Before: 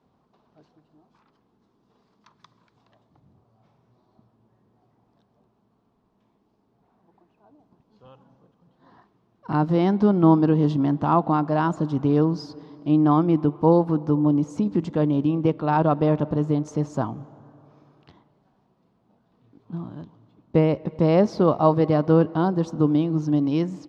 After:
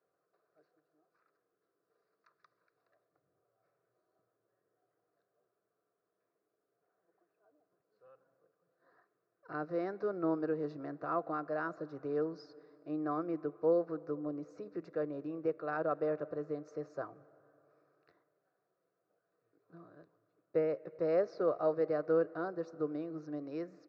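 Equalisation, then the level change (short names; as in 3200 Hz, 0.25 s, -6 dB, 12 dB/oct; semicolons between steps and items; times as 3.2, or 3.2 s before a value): speaker cabinet 350–4400 Hz, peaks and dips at 380 Hz -4 dB, 610 Hz -3 dB, 980 Hz -4 dB, 2100 Hz -5 dB, 3100 Hz -5 dB; fixed phaser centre 870 Hz, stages 6; notch 1100 Hz, Q 13; -6.0 dB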